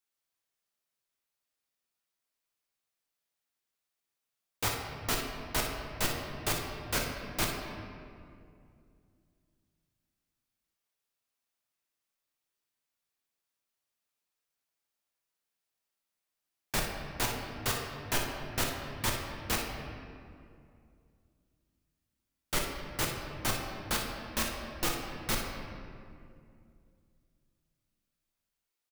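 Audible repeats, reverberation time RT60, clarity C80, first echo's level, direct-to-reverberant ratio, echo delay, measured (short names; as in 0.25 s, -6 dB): 1, 2.4 s, 4.0 dB, -10.0 dB, -0.5 dB, 57 ms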